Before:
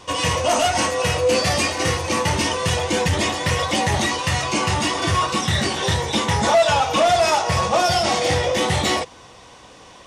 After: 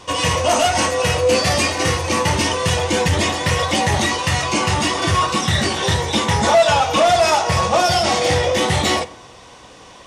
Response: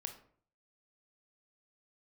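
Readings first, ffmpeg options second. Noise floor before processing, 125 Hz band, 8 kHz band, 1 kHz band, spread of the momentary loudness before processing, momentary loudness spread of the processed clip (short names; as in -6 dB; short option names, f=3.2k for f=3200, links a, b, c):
-45 dBFS, +2.5 dB, +2.5 dB, +2.5 dB, 4 LU, 4 LU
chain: -filter_complex "[0:a]asplit=2[a][b];[1:a]atrim=start_sample=2205,asetrate=29547,aresample=44100[c];[b][c]afir=irnorm=-1:irlink=0,volume=-8.5dB[d];[a][d]amix=inputs=2:normalize=0"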